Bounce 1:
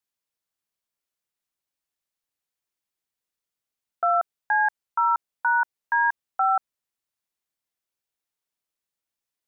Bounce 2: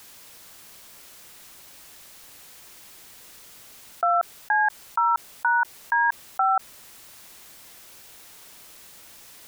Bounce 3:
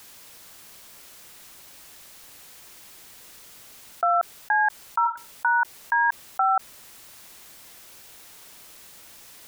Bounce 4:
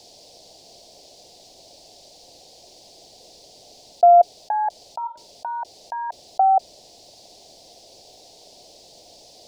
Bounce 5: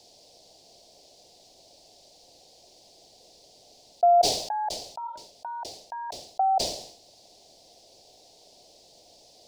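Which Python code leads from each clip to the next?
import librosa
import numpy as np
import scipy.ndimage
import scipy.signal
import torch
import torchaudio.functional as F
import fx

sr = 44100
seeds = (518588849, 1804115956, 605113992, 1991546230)

y1 = fx.env_flatten(x, sr, amount_pct=70)
y2 = fx.spec_repair(y1, sr, seeds[0], start_s=5.07, length_s=0.24, low_hz=640.0, high_hz=1400.0, source='both')
y3 = fx.curve_eq(y2, sr, hz=(220.0, 710.0, 1300.0, 4700.0, 15000.0), db=(0, 12, -27, 7, -23))
y3 = y3 * librosa.db_to_amplitude(1.5)
y4 = fx.sustainer(y3, sr, db_per_s=82.0)
y4 = y4 * librosa.db_to_amplitude(-7.0)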